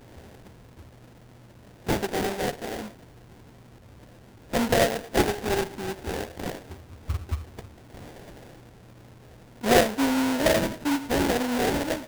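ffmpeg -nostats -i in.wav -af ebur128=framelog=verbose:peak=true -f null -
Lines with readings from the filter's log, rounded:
Integrated loudness:
  I:         -26.1 LUFS
  Threshold: -38.5 LUFS
Loudness range:
  LRA:        11.9 LU
  Threshold: -49.0 LUFS
  LRA low:   -37.2 LUFS
  LRA high:  -25.2 LUFS
True peak:
  Peak:       -7.9 dBFS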